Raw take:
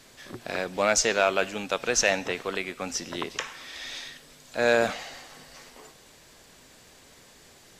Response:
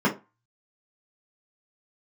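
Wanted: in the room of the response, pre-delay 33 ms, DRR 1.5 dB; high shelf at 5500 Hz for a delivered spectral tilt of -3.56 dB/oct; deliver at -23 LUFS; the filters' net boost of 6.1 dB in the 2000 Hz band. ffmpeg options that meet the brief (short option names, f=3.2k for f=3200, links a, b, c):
-filter_complex "[0:a]equalizer=f=2k:t=o:g=9,highshelf=f=5.5k:g=-7,asplit=2[a][b];[1:a]atrim=start_sample=2205,adelay=33[c];[b][c]afir=irnorm=-1:irlink=0,volume=-16.5dB[d];[a][d]amix=inputs=2:normalize=0,volume=-1.5dB"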